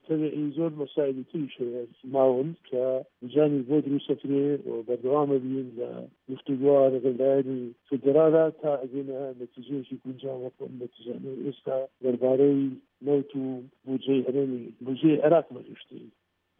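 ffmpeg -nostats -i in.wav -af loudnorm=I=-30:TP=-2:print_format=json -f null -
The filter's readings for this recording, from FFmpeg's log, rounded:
"input_i" : "-26.7",
"input_tp" : "-9.0",
"input_lra" : "2.2",
"input_thresh" : "-37.4",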